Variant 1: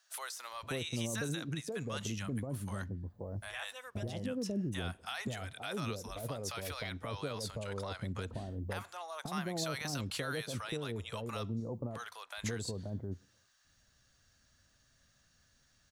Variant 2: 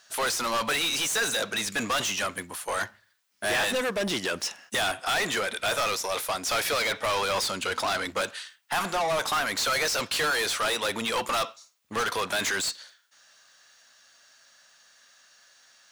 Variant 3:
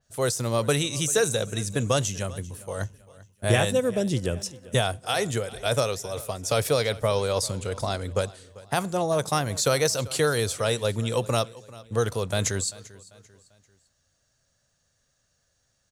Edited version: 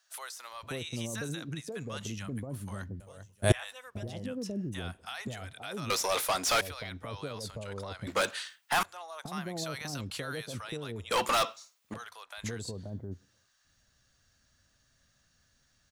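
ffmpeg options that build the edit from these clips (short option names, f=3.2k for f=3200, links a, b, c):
-filter_complex "[1:a]asplit=3[a][b][c];[0:a]asplit=5[d][e][f][g][h];[d]atrim=end=3.002[i];[2:a]atrim=start=2.998:end=3.522[j];[e]atrim=start=3.518:end=5.902[k];[a]atrim=start=5.898:end=6.612[l];[f]atrim=start=6.608:end=8.072[m];[b]atrim=start=8.068:end=8.832[n];[g]atrim=start=8.828:end=11.112[o];[c]atrim=start=11.108:end=11.942[p];[h]atrim=start=11.938[q];[i][j]acrossfade=d=0.004:c1=hsin:c2=hsin[r];[r][k]acrossfade=d=0.004:c1=hsin:c2=hsin[s];[s][l]acrossfade=d=0.004:c1=hsin:c2=hsin[t];[t][m]acrossfade=d=0.004:c1=hsin:c2=hsin[u];[u][n]acrossfade=d=0.004:c1=hsin:c2=hsin[v];[v][o]acrossfade=d=0.004:c1=hsin:c2=hsin[w];[w][p]acrossfade=d=0.004:c1=hsin:c2=hsin[x];[x][q]acrossfade=d=0.004:c1=hsin:c2=hsin"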